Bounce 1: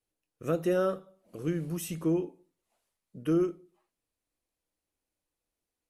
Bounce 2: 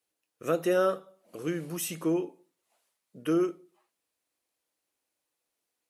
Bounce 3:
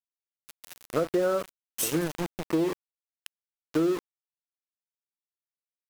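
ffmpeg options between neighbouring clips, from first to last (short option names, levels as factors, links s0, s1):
-af "highpass=f=510:p=1,volume=1.88"
-filter_complex "[0:a]acrossover=split=1900[s0][s1];[s0]adelay=480[s2];[s2][s1]amix=inputs=2:normalize=0,aeval=exprs='val(0)*gte(abs(val(0)),0.02)':c=same,acompressor=threshold=0.0355:ratio=6,volume=2.24"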